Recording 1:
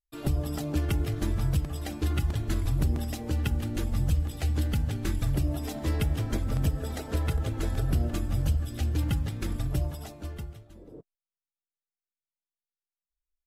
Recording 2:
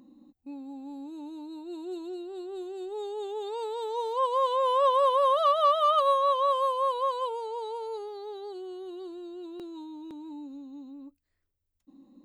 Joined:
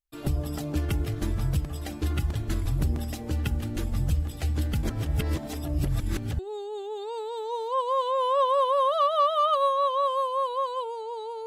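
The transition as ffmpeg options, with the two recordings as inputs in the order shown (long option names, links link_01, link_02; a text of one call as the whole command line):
ffmpeg -i cue0.wav -i cue1.wav -filter_complex "[0:a]apad=whole_dur=11.46,atrim=end=11.46,asplit=2[link_01][link_02];[link_01]atrim=end=4.832[link_03];[link_02]atrim=start=4.828:end=6.392,asetpts=PTS-STARTPTS,areverse[link_04];[1:a]atrim=start=2.838:end=7.91[link_05];[link_03][link_04]acrossfade=duration=0.004:curve1=hsin:curve2=hsin[link_06];[link_06][link_05]acrossfade=duration=0.004:curve1=hsin:curve2=hsin" out.wav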